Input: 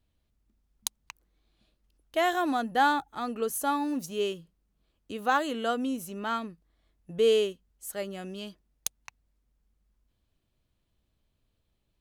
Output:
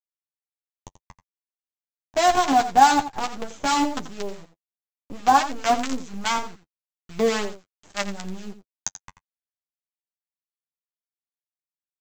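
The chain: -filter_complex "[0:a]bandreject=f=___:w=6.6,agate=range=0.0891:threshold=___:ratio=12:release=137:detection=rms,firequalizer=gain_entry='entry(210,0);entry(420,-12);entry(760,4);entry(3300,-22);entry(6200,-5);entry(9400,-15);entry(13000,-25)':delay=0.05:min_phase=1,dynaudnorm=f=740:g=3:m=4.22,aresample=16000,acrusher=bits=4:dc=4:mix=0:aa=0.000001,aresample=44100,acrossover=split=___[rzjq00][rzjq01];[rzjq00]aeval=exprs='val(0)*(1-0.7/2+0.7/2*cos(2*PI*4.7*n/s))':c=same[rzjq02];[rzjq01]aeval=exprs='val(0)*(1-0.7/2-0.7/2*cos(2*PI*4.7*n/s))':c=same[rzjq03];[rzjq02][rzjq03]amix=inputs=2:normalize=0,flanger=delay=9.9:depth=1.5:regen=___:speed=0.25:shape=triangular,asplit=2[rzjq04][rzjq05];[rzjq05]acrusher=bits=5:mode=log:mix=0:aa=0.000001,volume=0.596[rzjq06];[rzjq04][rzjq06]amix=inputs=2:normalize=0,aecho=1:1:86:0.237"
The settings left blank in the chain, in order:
1300, 0.00178, 1000, -19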